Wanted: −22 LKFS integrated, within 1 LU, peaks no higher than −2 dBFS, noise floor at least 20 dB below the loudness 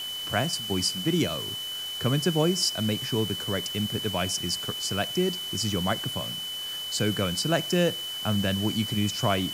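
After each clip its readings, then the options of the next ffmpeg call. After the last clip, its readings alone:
interfering tone 3,000 Hz; level of the tone −32 dBFS; background noise floor −34 dBFS; target noise floor −47 dBFS; integrated loudness −27.0 LKFS; sample peak −9.5 dBFS; target loudness −22.0 LKFS
→ -af "bandreject=frequency=3000:width=30"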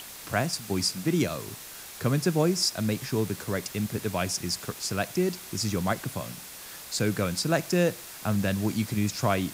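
interfering tone none found; background noise floor −43 dBFS; target noise floor −48 dBFS
→ -af "afftdn=noise_reduction=6:noise_floor=-43"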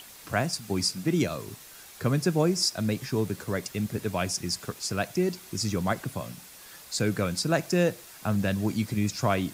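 background noise floor −48 dBFS; target noise floor −49 dBFS
→ -af "afftdn=noise_reduction=6:noise_floor=-48"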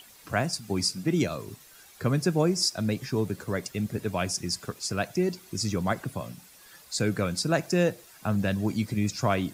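background noise floor −53 dBFS; integrated loudness −28.5 LKFS; sample peak −11.0 dBFS; target loudness −22.0 LKFS
→ -af "volume=6.5dB"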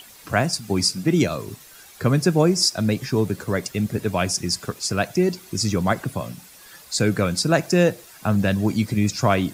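integrated loudness −22.0 LKFS; sample peak −4.5 dBFS; background noise floor −46 dBFS

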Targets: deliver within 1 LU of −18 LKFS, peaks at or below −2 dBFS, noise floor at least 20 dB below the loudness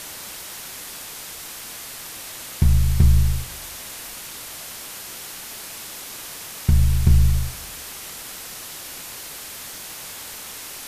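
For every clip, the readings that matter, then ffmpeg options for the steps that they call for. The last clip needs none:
background noise floor −36 dBFS; target noise floor −46 dBFS; integrated loudness −26.0 LKFS; sample peak −4.0 dBFS; target loudness −18.0 LKFS
→ -af "afftdn=noise_reduction=10:noise_floor=-36"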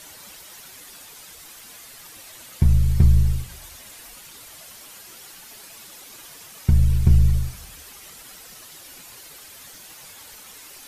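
background noise floor −44 dBFS; integrated loudness −20.0 LKFS; sample peak −4.5 dBFS; target loudness −18.0 LKFS
→ -af "volume=2dB"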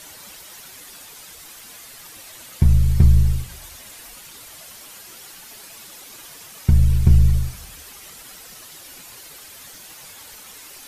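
integrated loudness −18.0 LKFS; sample peak −2.5 dBFS; background noise floor −42 dBFS

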